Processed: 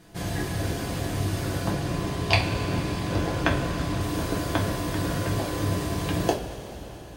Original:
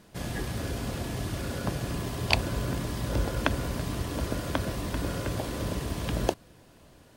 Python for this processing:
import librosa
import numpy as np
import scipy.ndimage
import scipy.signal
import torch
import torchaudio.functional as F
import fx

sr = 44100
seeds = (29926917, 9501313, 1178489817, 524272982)

y = fx.high_shelf(x, sr, hz=9600.0, db=-11.0, at=(1.7, 4.01))
y = fx.rev_double_slope(y, sr, seeds[0], early_s=0.3, late_s=4.7, knee_db=-18, drr_db=-2.5)